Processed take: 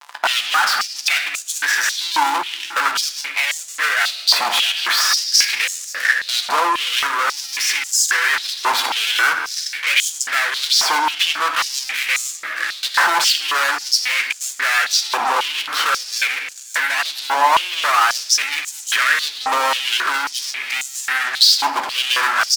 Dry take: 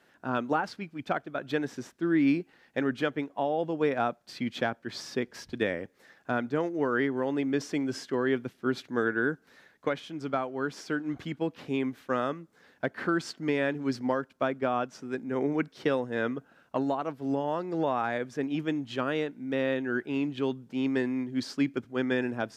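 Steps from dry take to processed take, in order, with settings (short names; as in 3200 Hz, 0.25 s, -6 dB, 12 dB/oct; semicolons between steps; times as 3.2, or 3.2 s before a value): fuzz box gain 50 dB, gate -56 dBFS; doubler 14 ms -11.5 dB; on a send: feedback echo 0.483 s, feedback 43%, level -19 dB; on the sum: shoebox room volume 1400 m³, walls mixed, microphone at 0.78 m; maximiser +12 dB; stepped high-pass 3.7 Hz 950–7000 Hz; gain -9.5 dB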